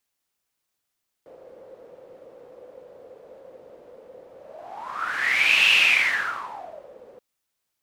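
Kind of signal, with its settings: whoosh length 5.93 s, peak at 4.45, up 1.49 s, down 1.34 s, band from 510 Hz, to 2700 Hz, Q 9.9, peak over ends 29 dB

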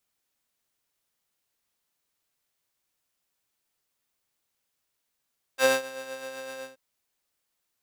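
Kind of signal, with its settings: synth patch with tremolo C4, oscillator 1 saw, oscillator 2 square, interval +12 st, detune 21 cents, oscillator 2 level -1.5 dB, sub -9 dB, filter highpass, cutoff 290 Hz, Q 0.75, filter envelope 2 oct, filter decay 0.07 s, attack 69 ms, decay 0.17 s, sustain -20.5 dB, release 0.16 s, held 1.02 s, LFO 7.8 Hz, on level 4 dB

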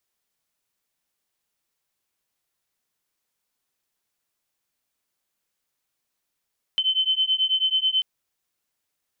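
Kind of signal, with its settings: beating tones 3060 Hz, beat 9.2 Hz, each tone -22.5 dBFS 1.24 s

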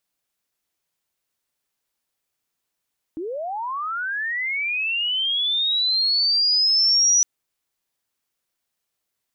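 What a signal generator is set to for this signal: chirp linear 300 Hz -> 5900 Hz -26.5 dBFS -> -13.5 dBFS 4.06 s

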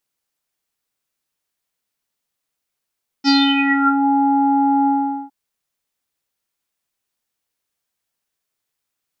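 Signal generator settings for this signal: synth note square C#4 24 dB/oct, low-pass 950 Hz, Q 9.1, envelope 2.5 oct, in 0.81 s, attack 42 ms, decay 0.27 s, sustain -5 dB, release 0.43 s, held 1.63 s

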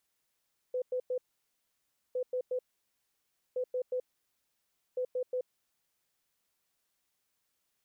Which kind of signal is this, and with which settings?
beep pattern sine 504 Hz, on 0.08 s, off 0.10 s, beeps 3, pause 0.97 s, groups 4, -29.5 dBFS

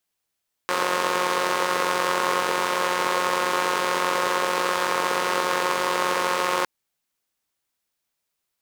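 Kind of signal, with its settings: four-cylinder engine model, steady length 5.96 s, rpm 5400, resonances 510/1000 Hz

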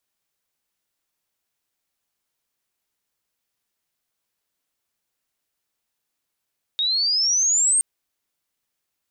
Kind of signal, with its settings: chirp logarithmic 3700 Hz -> 8700 Hz -19 dBFS -> -15 dBFS 1.02 s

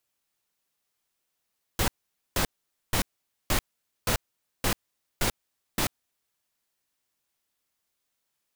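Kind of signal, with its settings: noise bursts pink, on 0.09 s, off 0.48 s, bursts 8, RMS -24.5 dBFS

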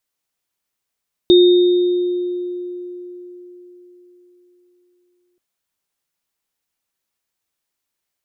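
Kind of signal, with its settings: sine partials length 4.08 s, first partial 356 Hz, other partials 3680 Hz, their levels -9.5 dB, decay 4.20 s, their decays 1.65 s, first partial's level -5.5 dB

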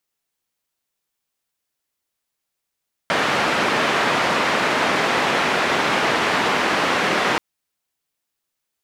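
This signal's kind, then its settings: noise band 190–1900 Hz, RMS -19.5 dBFS 4.28 s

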